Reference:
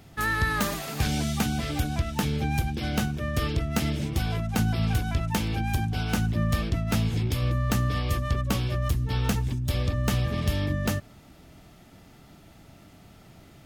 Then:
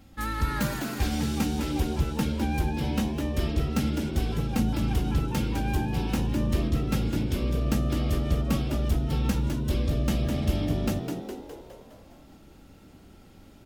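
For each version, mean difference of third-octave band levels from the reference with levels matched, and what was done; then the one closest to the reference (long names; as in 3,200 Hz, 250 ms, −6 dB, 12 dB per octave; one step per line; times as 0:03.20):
4.5 dB: low-shelf EQ 270 Hz +7 dB
comb filter 3.7 ms, depth 93%
echo with shifted repeats 206 ms, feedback 55%, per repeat +80 Hz, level −6.5 dB
level −7.5 dB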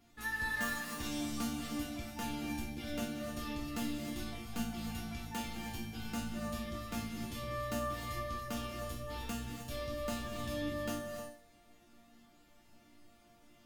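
6.5 dB: notch filter 660 Hz, Q 12
resonators tuned to a chord A#3 major, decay 0.48 s
reverb whose tail is shaped and stops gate 330 ms rising, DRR 5 dB
level +8.5 dB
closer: first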